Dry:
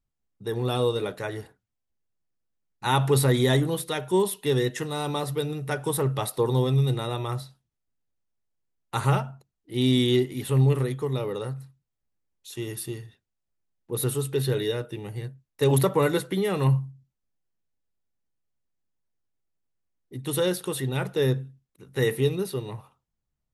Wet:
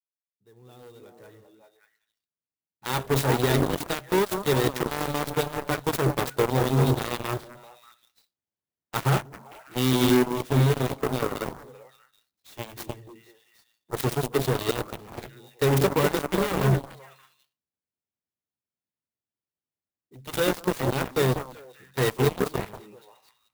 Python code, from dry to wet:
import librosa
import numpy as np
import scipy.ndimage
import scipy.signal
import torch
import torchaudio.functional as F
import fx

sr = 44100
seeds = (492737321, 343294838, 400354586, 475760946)

p1 = fx.fade_in_head(x, sr, length_s=4.42)
p2 = scipy.signal.sosfilt(scipy.signal.butter(4, 71.0, 'highpass', fs=sr, output='sos'), p1)
p3 = fx.rider(p2, sr, range_db=3, speed_s=0.5)
p4 = p2 + (p3 * 10.0 ** (-2.5 / 20.0))
p5 = np.clip(p4, -10.0 ** (-14.0 / 20.0), 10.0 ** (-14.0 / 20.0))
p6 = p5 + fx.echo_stepped(p5, sr, ms=194, hz=270.0, octaves=1.4, feedback_pct=70, wet_db=-0.5, dry=0)
p7 = fx.cheby_harmonics(p6, sr, harmonics=(7,), levels_db=(-14,), full_scale_db=-8.0)
p8 = fx.clock_jitter(p7, sr, seeds[0], jitter_ms=0.032)
y = p8 * 10.0 ** (-3.5 / 20.0)